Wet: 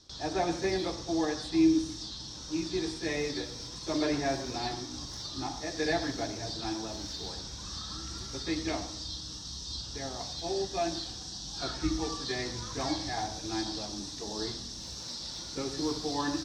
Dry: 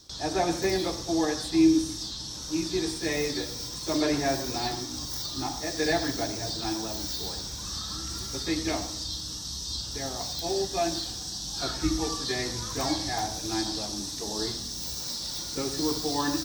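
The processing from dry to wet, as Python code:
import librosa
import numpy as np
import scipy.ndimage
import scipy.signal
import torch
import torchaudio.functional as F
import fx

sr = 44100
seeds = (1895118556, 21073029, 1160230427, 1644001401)

y = scipy.signal.sosfilt(scipy.signal.butter(2, 5700.0, 'lowpass', fs=sr, output='sos'), x)
y = y * librosa.db_to_amplitude(-3.5)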